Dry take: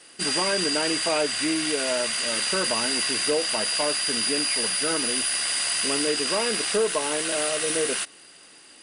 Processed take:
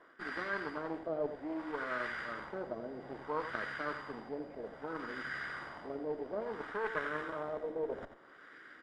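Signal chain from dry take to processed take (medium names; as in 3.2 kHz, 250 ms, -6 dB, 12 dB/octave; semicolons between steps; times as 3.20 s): comb filter that takes the minimum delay 0.56 ms; high-pass 290 Hz 12 dB/octave; reverse; compression 12:1, threshold -35 dBFS, peak gain reduction 14.5 dB; reverse; Chebyshev shaper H 2 -8 dB, 7 -28 dB, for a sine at -23 dBFS; LFO low-pass sine 0.61 Hz 610–1600 Hz; on a send: delay 87 ms -10.5 dB; on the sum: trim +1.5 dB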